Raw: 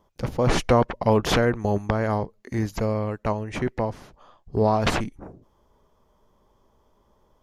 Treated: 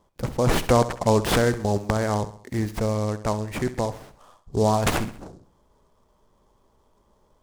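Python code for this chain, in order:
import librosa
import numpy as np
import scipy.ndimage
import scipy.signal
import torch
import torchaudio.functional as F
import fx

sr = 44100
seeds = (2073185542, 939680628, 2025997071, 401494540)

y = fx.echo_feedback(x, sr, ms=66, feedback_pct=48, wet_db=-14.5)
y = fx.noise_mod_delay(y, sr, seeds[0], noise_hz=5500.0, depth_ms=0.032)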